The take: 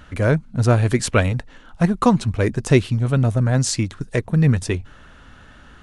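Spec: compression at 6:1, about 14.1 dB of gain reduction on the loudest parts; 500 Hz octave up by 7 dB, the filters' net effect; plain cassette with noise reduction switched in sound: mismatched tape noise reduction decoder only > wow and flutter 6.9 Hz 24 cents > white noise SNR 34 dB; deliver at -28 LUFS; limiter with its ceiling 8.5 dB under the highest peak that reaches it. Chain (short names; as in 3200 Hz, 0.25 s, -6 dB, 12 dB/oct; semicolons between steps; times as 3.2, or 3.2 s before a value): bell 500 Hz +8.5 dB; compressor 6:1, threshold -21 dBFS; limiter -19 dBFS; mismatched tape noise reduction decoder only; wow and flutter 6.9 Hz 24 cents; white noise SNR 34 dB; gain +1 dB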